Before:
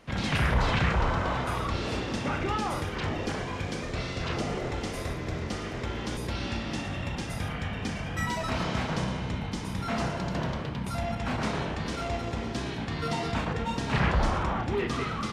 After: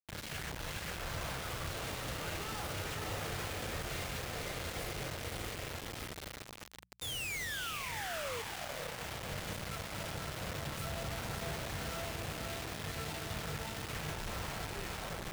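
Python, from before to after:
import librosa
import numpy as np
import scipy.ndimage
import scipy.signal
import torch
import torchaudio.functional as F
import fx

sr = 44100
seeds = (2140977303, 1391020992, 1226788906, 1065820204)

y = fx.tape_stop_end(x, sr, length_s=0.5)
y = fx.doppler_pass(y, sr, speed_mps=9, closest_m=3.4, pass_at_s=7.01)
y = fx.over_compress(y, sr, threshold_db=-52.0, ratio=-1.0)
y = fx.notch(y, sr, hz=380.0, q=12.0)
y = fx.spec_paint(y, sr, seeds[0], shape='fall', start_s=7.01, length_s=1.41, low_hz=440.0, high_hz=3700.0, level_db=-48.0)
y = fx.graphic_eq_15(y, sr, hz=(250, 1000, 6300), db=(-11, -6, -10))
y = fx.echo_diffused(y, sr, ms=538, feedback_pct=63, wet_db=-3)
y = fx.quant_dither(y, sr, seeds[1], bits=8, dither='none')
y = fx.hum_notches(y, sr, base_hz=60, count=3)
y = y * librosa.db_to_amplitude(7.5)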